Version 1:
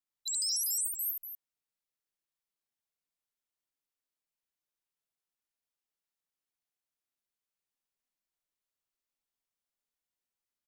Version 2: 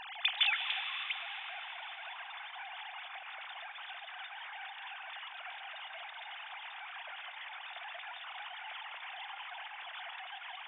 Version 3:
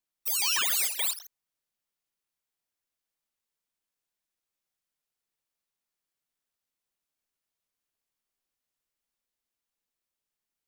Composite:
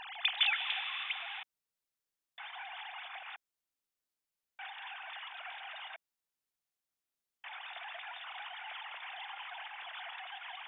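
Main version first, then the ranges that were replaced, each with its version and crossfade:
2
0:01.43–0:02.38: punch in from 1
0:03.36–0:04.59: punch in from 1
0:05.96–0:07.44: punch in from 1
not used: 3

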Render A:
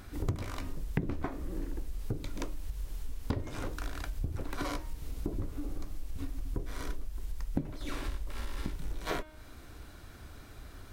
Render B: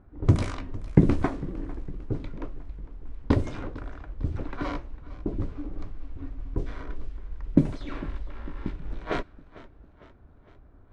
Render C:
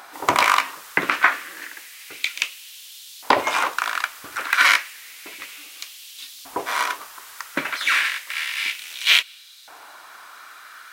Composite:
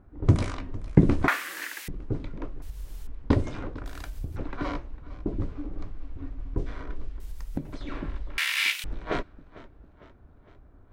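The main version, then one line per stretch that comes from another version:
B
0:01.28–0:01.88: punch in from C
0:02.62–0:03.07: punch in from A
0:03.86–0:04.36: punch in from A
0:07.20–0:07.73: punch in from A
0:08.38–0:08.84: punch in from C

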